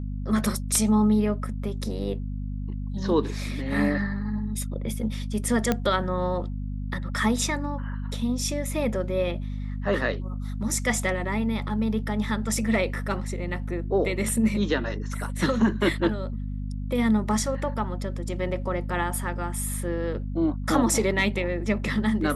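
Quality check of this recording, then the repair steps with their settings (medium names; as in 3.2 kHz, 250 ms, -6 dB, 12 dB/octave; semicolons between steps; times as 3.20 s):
hum 50 Hz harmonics 5 -31 dBFS
5.72 s: pop -9 dBFS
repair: de-click; de-hum 50 Hz, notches 5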